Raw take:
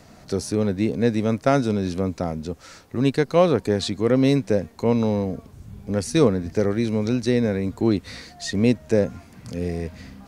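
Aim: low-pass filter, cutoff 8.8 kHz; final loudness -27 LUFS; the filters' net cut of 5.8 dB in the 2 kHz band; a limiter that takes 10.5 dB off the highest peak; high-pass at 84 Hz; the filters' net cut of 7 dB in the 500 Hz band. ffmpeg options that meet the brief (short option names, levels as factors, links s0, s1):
-af "highpass=84,lowpass=8800,equalizer=f=500:t=o:g=-8,equalizer=f=2000:t=o:g=-7,volume=1.33,alimiter=limit=0.15:level=0:latency=1"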